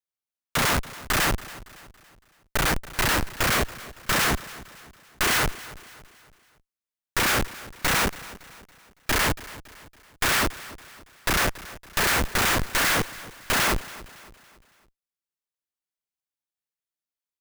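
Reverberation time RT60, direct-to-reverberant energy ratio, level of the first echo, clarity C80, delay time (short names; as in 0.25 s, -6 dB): none, none, -18.0 dB, none, 0.28 s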